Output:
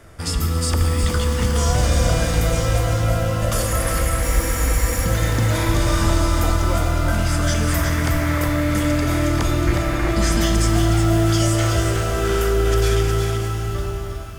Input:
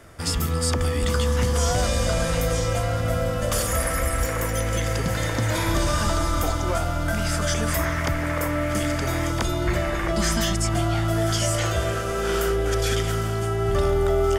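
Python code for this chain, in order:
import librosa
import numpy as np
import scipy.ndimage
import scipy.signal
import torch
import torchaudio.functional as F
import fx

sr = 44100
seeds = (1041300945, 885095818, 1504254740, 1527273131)

y = fx.fade_out_tail(x, sr, length_s=1.56)
y = fx.low_shelf(y, sr, hz=100.0, db=6.0)
y = y + 10.0 ** (-7.0 / 20.0) * np.pad(y, (int(364 * sr / 1000.0), 0))[:len(y)]
y = fx.spec_freeze(y, sr, seeds[0], at_s=4.26, hold_s=0.8)
y = fx.rev_shimmer(y, sr, seeds[1], rt60_s=3.7, semitones=12, shimmer_db=-8, drr_db=5.5)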